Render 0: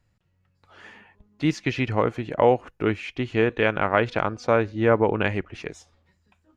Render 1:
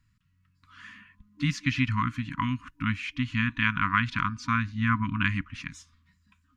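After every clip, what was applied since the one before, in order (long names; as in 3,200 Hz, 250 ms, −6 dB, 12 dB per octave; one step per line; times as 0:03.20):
brick-wall band-stop 300–960 Hz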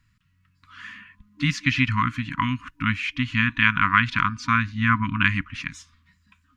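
parametric band 2,200 Hz +4.5 dB 2.3 octaves
level +3 dB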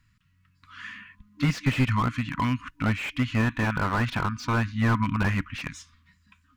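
slew-rate limiting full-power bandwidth 77 Hz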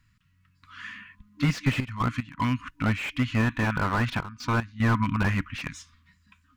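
gate pattern "xxxxxxxxx.x." 75 BPM −12 dB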